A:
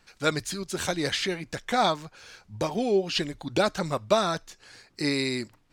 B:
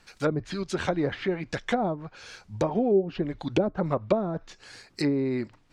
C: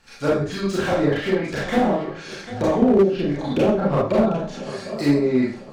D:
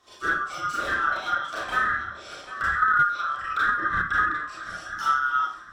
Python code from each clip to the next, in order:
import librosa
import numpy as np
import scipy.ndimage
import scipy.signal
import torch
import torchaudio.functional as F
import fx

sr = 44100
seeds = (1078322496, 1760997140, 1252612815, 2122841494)

y1 = fx.env_lowpass_down(x, sr, base_hz=470.0, full_db=-21.5)
y1 = y1 * librosa.db_to_amplitude(3.0)
y2 = fx.echo_swing(y1, sr, ms=999, ratio=3, feedback_pct=34, wet_db=-15.0)
y2 = fx.rev_schroeder(y2, sr, rt60_s=0.42, comb_ms=28, drr_db=-7.0)
y2 = fx.slew_limit(y2, sr, full_power_hz=110.0)
y3 = fx.band_swap(y2, sr, width_hz=1000)
y3 = y3 * librosa.db_to_amplitude(-5.5)